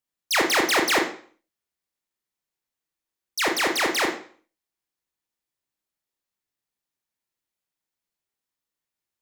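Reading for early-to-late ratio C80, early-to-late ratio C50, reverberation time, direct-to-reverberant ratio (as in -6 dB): 11.5 dB, 7.5 dB, 0.50 s, 2.0 dB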